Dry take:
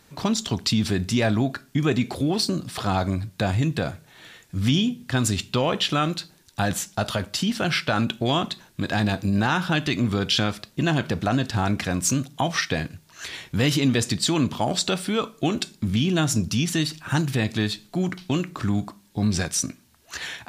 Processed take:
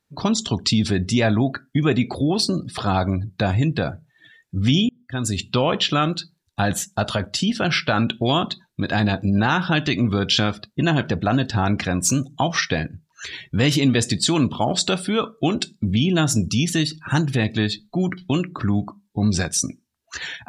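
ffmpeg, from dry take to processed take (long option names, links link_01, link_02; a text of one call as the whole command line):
ffmpeg -i in.wav -filter_complex "[0:a]asplit=2[link_01][link_02];[link_01]atrim=end=4.89,asetpts=PTS-STARTPTS,afade=type=out:start_time=4.886:duration=0.004:curve=hsin[link_03];[link_02]atrim=start=4.89,asetpts=PTS-STARTPTS,afade=type=in:duration=0.59[link_04];[link_03][link_04]concat=n=2:v=0:a=1,afftdn=noise_reduction=24:noise_floor=-40,volume=3dB" out.wav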